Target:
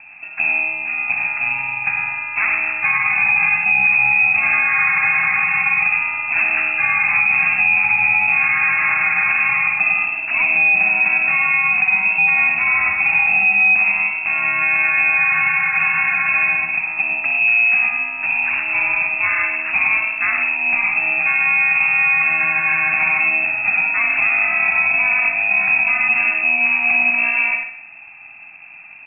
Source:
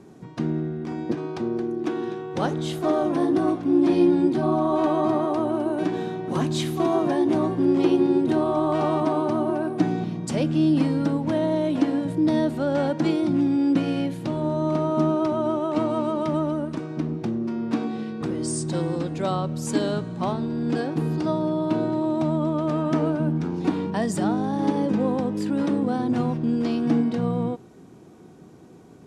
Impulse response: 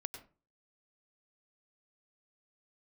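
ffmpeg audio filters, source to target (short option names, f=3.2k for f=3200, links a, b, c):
-filter_complex "[0:a]acrusher=samples=19:mix=1:aa=0.000001,aecho=1:1:61|122|183|244|305|366|427:0.376|0.207|0.114|0.0625|0.0344|0.0189|0.0104[a];[1:a]atrim=start_sample=2205,afade=t=out:st=0.21:d=0.01,atrim=end_sample=9702[b];[a][b]afir=irnorm=-1:irlink=0,lowpass=f=2.4k:t=q:w=0.5098,lowpass=f=2.4k:t=q:w=0.6013,lowpass=f=2.4k:t=q:w=0.9,lowpass=f=2.4k:t=q:w=2.563,afreqshift=-2800,alimiter=level_in=16dB:limit=-1dB:release=50:level=0:latency=1,volume=-6.5dB"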